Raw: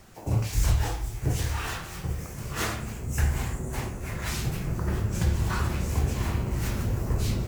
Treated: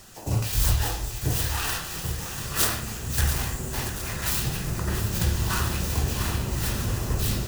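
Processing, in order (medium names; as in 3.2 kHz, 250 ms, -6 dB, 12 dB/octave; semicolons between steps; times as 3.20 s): tracing distortion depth 0.39 ms; treble shelf 2.2 kHz +11.5 dB; band-stop 2.2 kHz, Q 8.3; thinning echo 685 ms, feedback 51%, level -9.5 dB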